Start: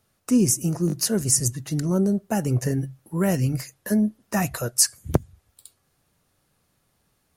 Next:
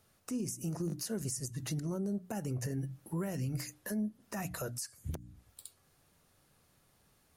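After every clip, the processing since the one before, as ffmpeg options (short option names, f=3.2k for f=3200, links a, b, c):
-af "bandreject=f=60:t=h:w=6,bandreject=f=120:t=h:w=6,bandreject=f=180:t=h:w=6,bandreject=f=240:t=h:w=6,bandreject=f=300:t=h:w=6,acompressor=threshold=-31dB:ratio=4,alimiter=level_in=4dB:limit=-24dB:level=0:latency=1:release=134,volume=-4dB"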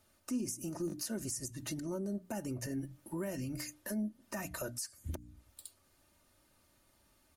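-af "aecho=1:1:3.3:0.61,volume=-1.5dB"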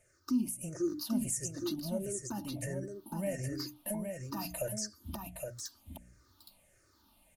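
-af "afftfilt=real='re*pow(10,21/40*sin(2*PI*(0.51*log(max(b,1)*sr/1024/100)/log(2)-(-1.5)*(pts-256)/sr)))':imag='im*pow(10,21/40*sin(2*PI*(0.51*log(max(b,1)*sr/1024/100)/log(2)-(-1.5)*(pts-256)/sr)))':win_size=1024:overlap=0.75,aecho=1:1:817:0.562,volume=-3.5dB"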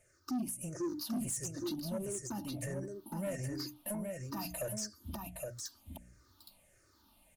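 -af "asoftclip=type=tanh:threshold=-31dB"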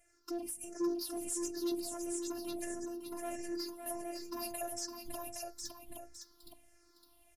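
-af "afftfilt=real='hypot(re,im)*cos(PI*b)':imag='0':win_size=512:overlap=0.75,aecho=1:1:560:0.447,aresample=32000,aresample=44100,volume=2.5dB"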